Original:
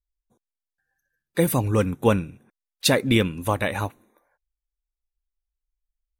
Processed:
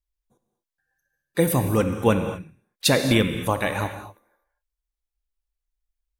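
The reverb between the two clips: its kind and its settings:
reverb whose tail is shaped and stops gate 270 ms flat, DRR 7 dB

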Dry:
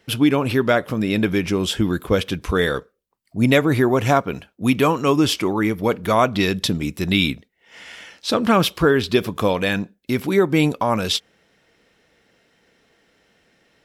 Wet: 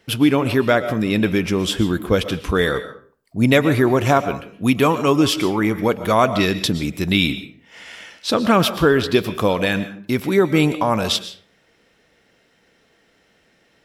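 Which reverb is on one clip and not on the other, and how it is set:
comb and all-pass reverb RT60 0.47 s, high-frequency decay 0.65×, pre-delay 85 ms, DRR 12 dB
level +1 dB

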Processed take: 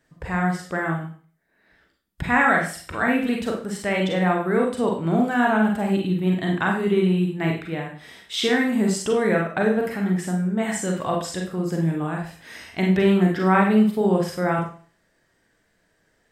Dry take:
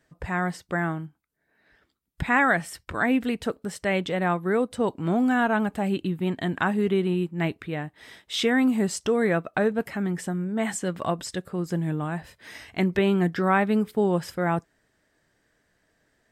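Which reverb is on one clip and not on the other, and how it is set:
four-comb reverb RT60 0.43 s, combs from 33 ms, DRR 0 dB

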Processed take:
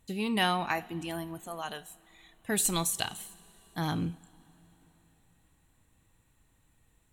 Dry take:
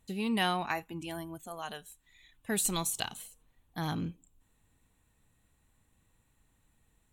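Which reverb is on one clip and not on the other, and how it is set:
coupled-rooms reverb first 0.37 s, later 4.2 s, from −18 dB, DRR 14.5 dB
level +2.5 dB

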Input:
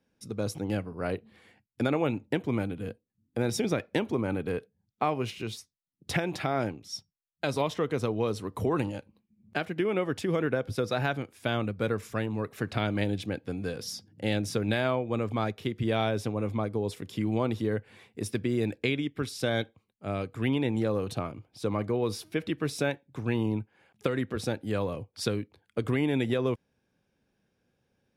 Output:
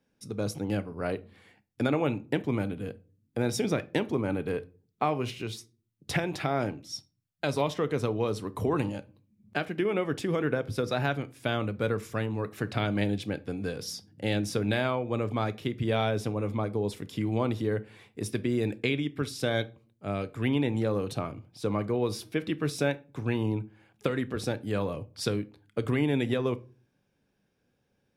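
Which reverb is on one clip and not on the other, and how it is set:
rectangular room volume 240 cubic metres, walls furnished, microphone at 0.33 metres

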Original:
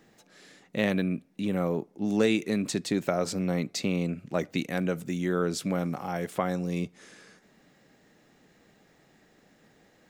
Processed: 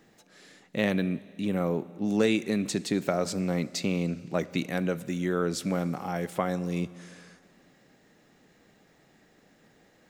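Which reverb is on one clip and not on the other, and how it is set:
four-comb reverb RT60 2.2 s, combs from 31 ms, DRR 17.5 dB

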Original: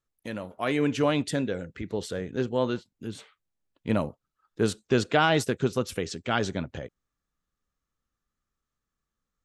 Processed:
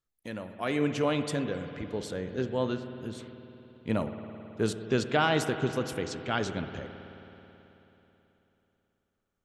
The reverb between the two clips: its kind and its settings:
spring reverb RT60 3.5 s, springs 54 ms, chirp 80 ms, DRR 8 dB
level −3.5 dB

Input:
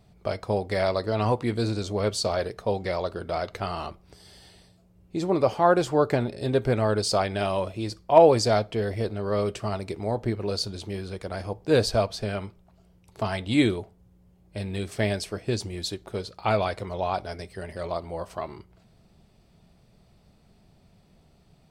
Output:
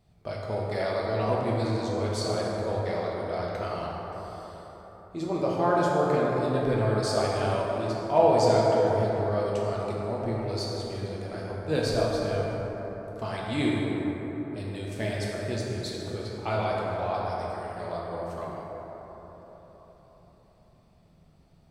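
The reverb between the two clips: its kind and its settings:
dense smooth reverb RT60 4.4 s, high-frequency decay 0.35×, DRR −4.5 dB
level −8 dB

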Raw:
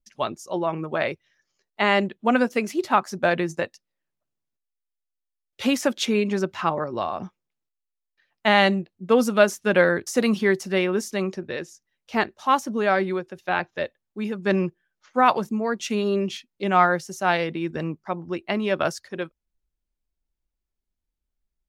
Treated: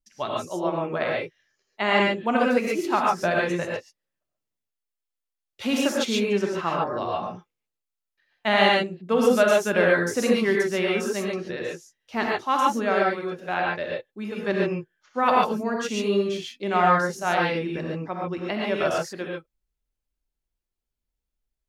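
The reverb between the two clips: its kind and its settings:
reverb whose tail is shaped and stops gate 160 ms rising, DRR −2.5 dB
level −4.5 dB

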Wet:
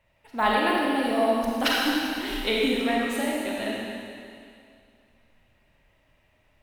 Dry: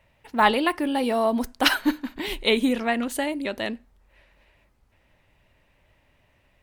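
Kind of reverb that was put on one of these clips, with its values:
comb and all-pass reverb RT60 2.3 s, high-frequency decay 1×, pre-delay 5 ms, DRR −4 dB
level −6.5 dB

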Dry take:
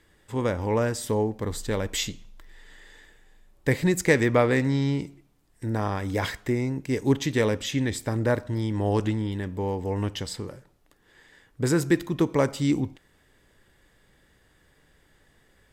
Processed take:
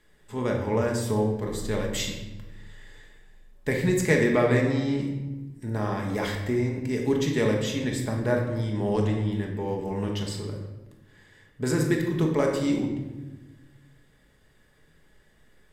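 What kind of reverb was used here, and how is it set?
rectangular room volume 650 cubic metres, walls mixed, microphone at 1.4 metres
level −4 dB

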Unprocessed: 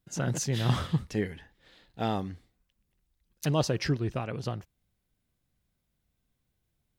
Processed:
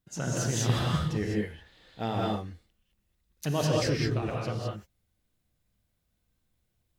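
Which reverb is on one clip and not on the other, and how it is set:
reverb whose tail is shaped and stops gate 230 ms rising, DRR −3 dB
level −3 dB

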